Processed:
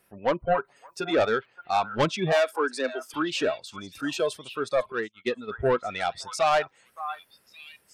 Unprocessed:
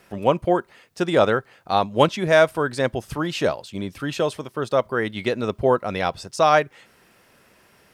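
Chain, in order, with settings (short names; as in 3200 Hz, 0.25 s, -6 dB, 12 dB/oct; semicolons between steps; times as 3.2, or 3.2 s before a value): spectral gate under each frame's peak -30 dB strong; soft clip -16.5 dBFS, distortion -9 dB; 0.44–1.11 comb 7.1 ms, depth 76%; 2.32–3.14 Chebyshev high-pass 240 Hz, order 8; delay with a stepping band-pass 0.569 s, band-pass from 1100 Hz, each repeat 1.4 oct, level -6.5 dB; spectral noise reduction 13 dB; 4.92–5.51 upward expander 2.5:1, over -43 dBFS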